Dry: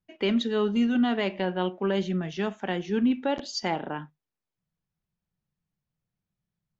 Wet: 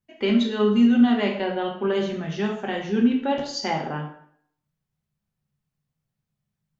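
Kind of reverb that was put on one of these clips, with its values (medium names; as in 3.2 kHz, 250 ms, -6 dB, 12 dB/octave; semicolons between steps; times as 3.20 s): plate-style reverb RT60 0.65 s, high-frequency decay 0.8×, DRR 0 dB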